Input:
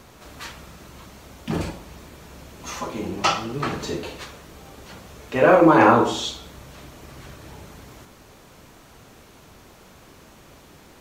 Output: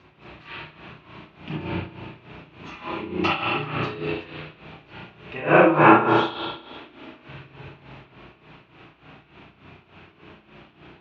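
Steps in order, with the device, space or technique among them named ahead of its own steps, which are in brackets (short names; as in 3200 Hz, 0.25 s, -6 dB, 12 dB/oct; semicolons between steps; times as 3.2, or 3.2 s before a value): combo amplifier with spring reverb and tremolo (spring tank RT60 1.3 s, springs 33/52 ms, chirp 30 ms, DRR -9 dB; tremolo 3.4 Hz, depth 76%; speaker cabinet 76–4100 Hz, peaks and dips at 160 Hz +4 dB, 230 Hz -5 dB, 330 Hz +4 dB, 510 Hz -7 dB, 2600 Hz +8 dB); 6.56–7.28 resonant low shelf 200 Hz -7.5 dB, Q 3; gain -6.5 dB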